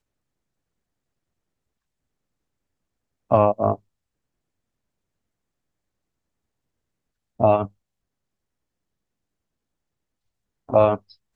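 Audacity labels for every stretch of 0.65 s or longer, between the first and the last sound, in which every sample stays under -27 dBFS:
3.750000	7.400000	silence
7.650000	10.700000	silence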